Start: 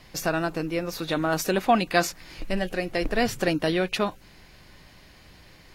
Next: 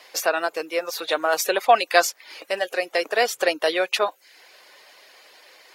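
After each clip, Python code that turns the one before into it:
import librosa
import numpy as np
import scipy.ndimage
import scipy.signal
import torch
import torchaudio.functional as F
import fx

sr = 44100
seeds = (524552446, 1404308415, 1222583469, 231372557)

y = scipy.signal.sosfilt(scipy.signal.cheby1(3, 1.0, 480.0, 'highpass', fs=sr, output='sos'), x)
y = fx.dereverb_blind(y, sr, rt60_s=0.51)
y = y * librosa.db_to_amplitude(6.0)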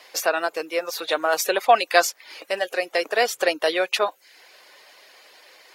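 y = fx.dmg_crackle(x, sr, seeds[0], per_s=44.0, level_db=-54.0)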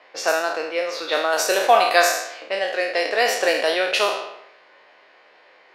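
y = fx.spec_trails(x, sr, decay_s=0.83)
y = fx.env_lowpass(y, sr, base_hz=2000.0, full_db=-14.0)
y = y * librosa.db_to_amplitude(-1.0)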